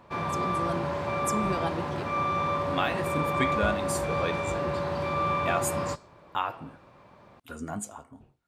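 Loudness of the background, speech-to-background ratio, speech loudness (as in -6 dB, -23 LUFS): -29.5 LUFS, -4.0 dB, -33.5 LUFS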